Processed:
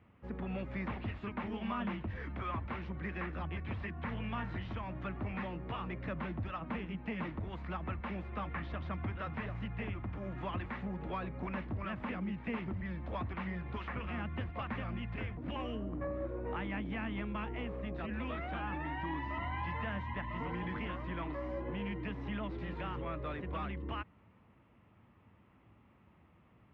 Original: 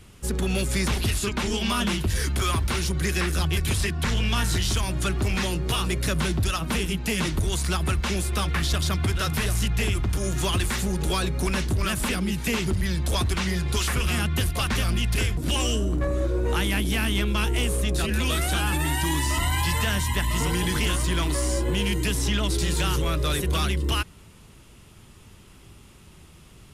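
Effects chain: cabinet simulation 110–2000 Hz, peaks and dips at 150 Hz -8 dB, 390 Hz -9 dB, 1.5 kHz -6 dB; trim -8.5 dB

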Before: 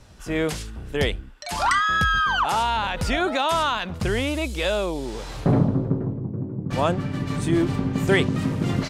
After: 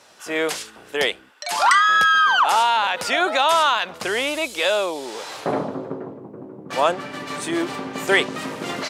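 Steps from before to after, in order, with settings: high-pass 510 Hz 12 dB/octave; trim +5.5 dB

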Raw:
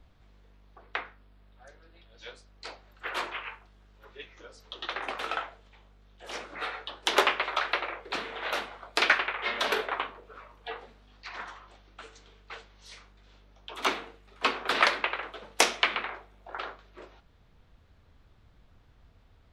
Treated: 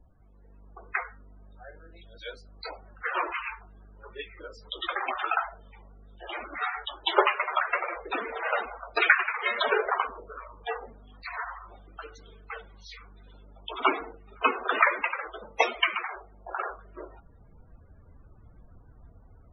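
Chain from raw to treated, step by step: 5.07–7.16 s: dynamic bell 490 Hz, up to -8 dB, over -58 dBFS, Q 4; level rider gain up to 7 dB; loudest bins only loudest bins 32

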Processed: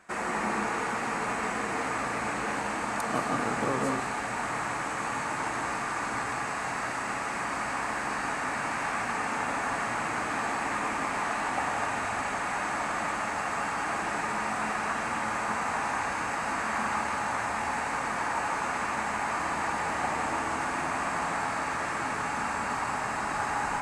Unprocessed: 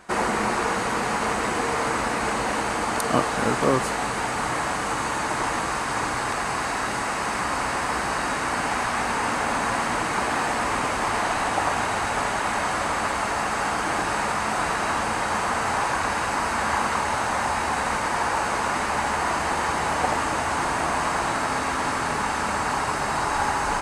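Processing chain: treble shelf 2.9 kHz -8.5 dB; reverberation RT60 1.0 s, pre-delay 150 ms, DRR 3 dB; trim -4 dB

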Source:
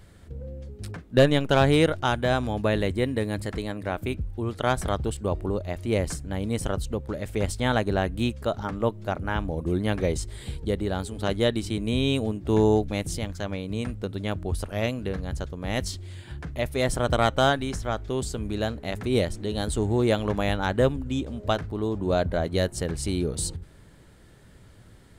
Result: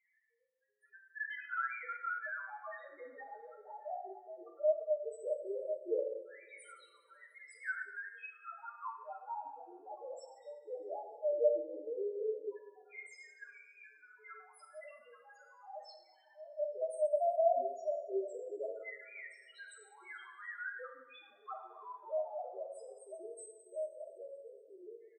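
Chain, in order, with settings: echo from a far wall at 280 m, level -12 dB; LFO high-pass saw down 0.16 Hz 430–2100 Hz; loudest bins only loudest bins 1; reverb removal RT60 0.61 s; two-slope reverb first 0.82 s, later 2.7 s, from -20 dB, DRR 0.5 dB; trim -6.5 dB

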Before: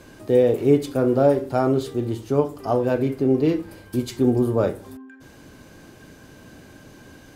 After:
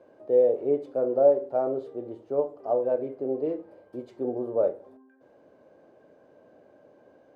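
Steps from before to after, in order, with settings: band-pass filter 570 Hz, Q 3.2

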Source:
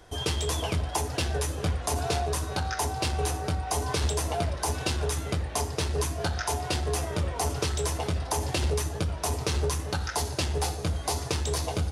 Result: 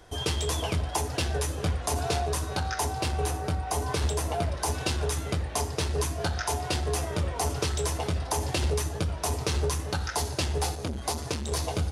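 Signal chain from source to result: 3.01–4.52 s: peaking EQ 5.1 kHz -3 dB 2.1 oct; 10.75–11.52 s: transformer saturation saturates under 510 Hz

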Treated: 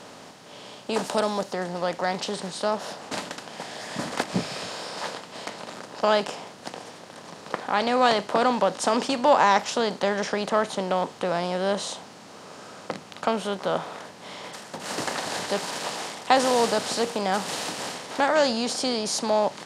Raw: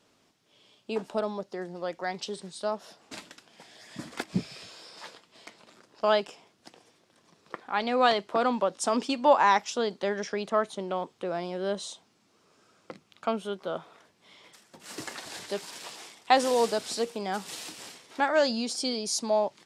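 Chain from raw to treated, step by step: spectral levelling over time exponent 0.6; 0.93–1.51 s: treble shelf 3.8 kHz -> 5.7 kHz +9.5 dB

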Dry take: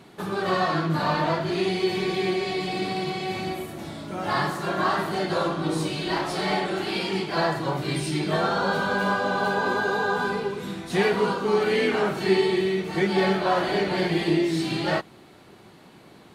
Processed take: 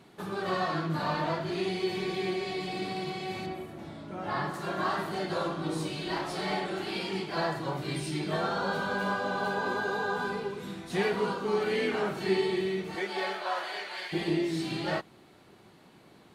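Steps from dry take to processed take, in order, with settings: 3.46–4.54 s: treble shelf 4.2 kHz -11.5 dB; 12.95–14.12 s: high-pass 410 Hz -> 1.3 kHz 12 dB/octave; trim -6.5 dB

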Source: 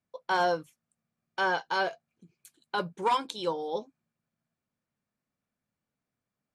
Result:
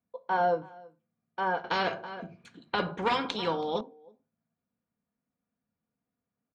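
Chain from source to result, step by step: high-pass 48 Hz; tape spacing loss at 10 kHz 39 dB; delay 326 ms -23.5 dB; reverberation, pre-delay 4 ms, DRR 7 dB; 1.64–3.81 s: spectrum-flattening compressor 2:1; trim +1.5 dB

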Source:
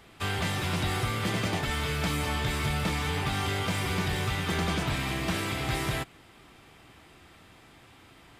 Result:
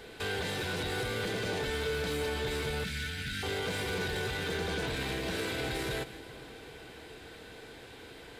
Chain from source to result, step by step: graphic EQ with 31 bands 100 Hz -5 dB, 160 Hz -5 dB, 1.25 kHz -8 dB, 4 kHz +6 dB; peak limiter -30 dBFS, peak gain reduction 11.5 dB; small resonant body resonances 460/1500 Hz, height 14 dB, ringing for 45 ms; saturation -29.5 dBFS, distortion -19 dB; 2.84–3.43 s: brick-wall FIR band-stop 290–1300 Hz; two-band feedback delay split 1.2 kHz, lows 404 ms, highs 159 ms, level -15.5 dB; trim +3.5 dB

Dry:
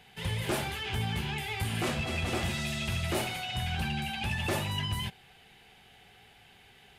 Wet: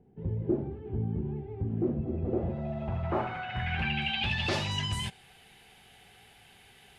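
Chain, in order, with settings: low-pass sweep 340 Hz -> 11 kHz, 2.10–5.28 s

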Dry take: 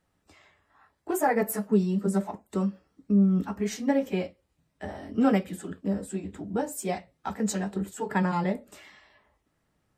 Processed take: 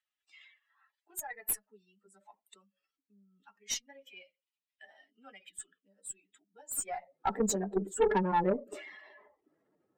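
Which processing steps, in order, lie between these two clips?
spectral contrast enhancement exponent 1.9; high-pass sweep 3 kHz -> 380 Hz, 6.71–7.26 s; Chebyshev shaper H 5 -23 dB, 6 -22 dB, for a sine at -16 dBFS

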